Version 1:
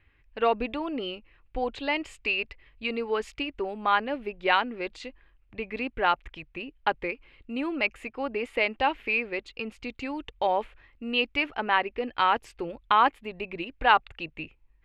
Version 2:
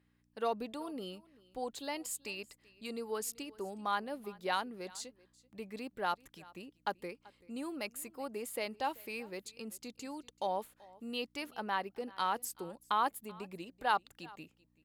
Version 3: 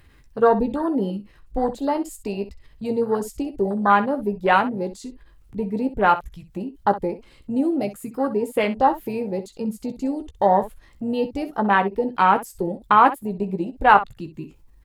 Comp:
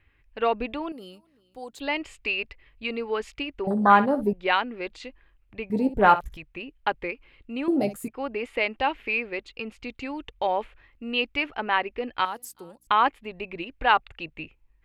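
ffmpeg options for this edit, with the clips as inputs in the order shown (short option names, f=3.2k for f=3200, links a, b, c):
-filter_complex "[1:a]asplit=2[a][b];[2:a]asplit=3[c][d][e];[0:a]asplit=6[f][g][h][i][j][k];[f]atrim=end=0.922[l];[a]atrim=start=0.918:end=1.802[m];[g]atrim=start=1.798:end=3.672[n];[c]atrim=start=3.668:end=4.332[o];[h]atrim=start=4.328:end=5.702[p];[d]atrim=start=5.698:end=6.372[q];[i]atrim=start=6.368:end=7.682[r];[e]atrim=start=7.678:end=8.082[s];[j]atrim=start=8.078:end=12.252[t];[b]atrim=start=12.248:end=12.872[u];[k]atrim=start=12.868[v];[l][m]acrossfade=d=0.004:c1=hsin:c2=hsin[w];[w][n]acrossfade=d=0.004:c1=hsin:c2=hsin[x];[x][o]acrossfade=d=0.004:c1=hsin:c2=hsin[y];[y][p]acrossfade=d=0.004:c1=hsin:c2=hsin[z];[z][q]acrossfade=d=0.004:c1=hsin:c2=hsin[aa];[aa][r]acrossfade=d=0.004:c1=hsin:c2=hsin[ab];[ab][s]acrossfade=d=0.004:c1=hsin:c2=hsin[ac];[ac][t]acrossfade=d=0.004:c1=hsin:c2=hsin[ad];[ad][u]acrossfade=d=0.004:c1=hsin:c2=hsin[ae];[ae][v]acrossfade=d=0.004:c1=hsin:c2=hsin"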